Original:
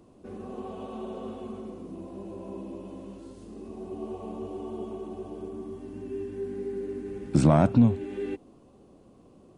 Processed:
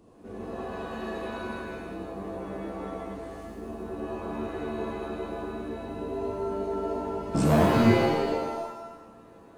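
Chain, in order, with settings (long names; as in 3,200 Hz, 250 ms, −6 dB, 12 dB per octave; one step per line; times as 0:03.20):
hard clipping −18.5 dBFS, distortion −9 dB
reverb with rising layers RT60 1 s, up +7 semitones, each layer −2 dB, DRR 0.5 dB
level −2 dB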